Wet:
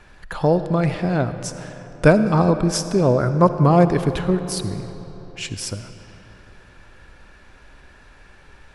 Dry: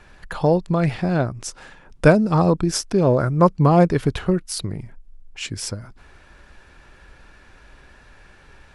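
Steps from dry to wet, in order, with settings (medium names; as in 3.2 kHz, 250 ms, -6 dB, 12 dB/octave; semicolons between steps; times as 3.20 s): algorithmic reverb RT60 3.7 s, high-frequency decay 0.65×, pre-delay 25 ms, DRR 10 dB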